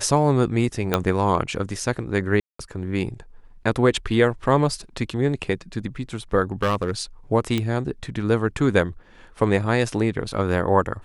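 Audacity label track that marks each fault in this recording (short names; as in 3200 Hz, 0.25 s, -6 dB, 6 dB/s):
0.940000	0.940000	pop -5 dBFS
2.400000	2.590000	gap 0.194 s
6.520000	6.910000	clipped -16 dBFS
7.580000	7.580000	pop -11 dBFS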